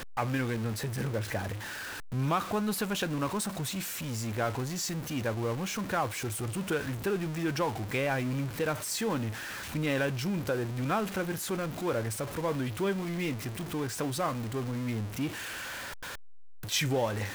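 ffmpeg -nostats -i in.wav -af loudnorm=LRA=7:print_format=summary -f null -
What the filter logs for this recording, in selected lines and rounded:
Input Integrated:    -32.4 LUFS
Input True Peak:     -15.5 dBTP
Input LRA:             2.0 LU
Input Threshold:     -42.6 LUFS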